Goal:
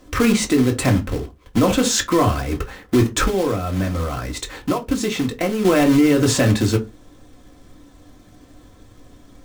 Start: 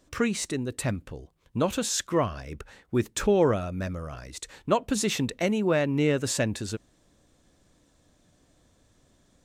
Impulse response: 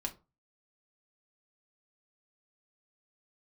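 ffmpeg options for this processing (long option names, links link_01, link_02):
-filter_complex "[0:a]highshelf=frequency=3600:gain=-8,asettb=1/sr,asplit=3[link_01][link_02][link_03];[link_01]atrim=end=3.234[link_04];[link_02]atrim=start=3.23:end=5.65,asetpts=PTS-STARTPTS,afade=type=in:duration=0.004:curve=qsin,afade=type=out:start_time=2.416:duration=0.004:curve=qsin,acompressor=threshold=-34dB:ratio=5[link_05];[link_03]atrim=start=5.646[link_06];[link_04][link_05]acrossfade=duration=0.004:curve1=hsin:curve2=qsin[link_07];[link_07][link_06]acrossfade=duration=0.004:curve1=qsin:curve2=hsin,acrusher=bits=3:mode=log:mix=0:aa=0.000001[link_08];[1:a]atrim=start_sample=2205,asetrate=57330,aresample=44100[link_09];[link_08][link_09]afir=irnorm=-1:irlink=0,alimiter=level_in=22.5dB:limit=-1dB:release=50:level=0:latency=1,volume=-6dB"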